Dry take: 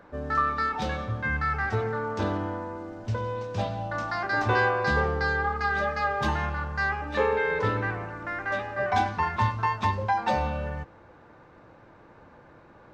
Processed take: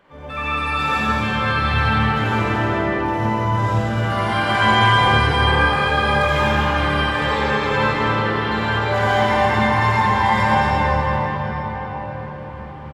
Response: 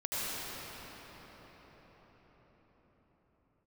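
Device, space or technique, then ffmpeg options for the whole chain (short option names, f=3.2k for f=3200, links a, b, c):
shimmer-style reverb: -filter_complex "[0:a]equalizer=f=1k:w=3.7:g=4,bandreject=f=4.2k:w=19,aecho=1:1:55.39|230.3:0.708|0.562,asplit=2[a][b];[b]asetrate=88200,aresample=44100,atempo=0.5,volume=-5dB[c];[a][c]amix=inputs=2:normalize=0[d];[1:a]atrim=start_sample=2205[e];[d][e]afir=irnorm=-1:irlink=0,volume=-3dB"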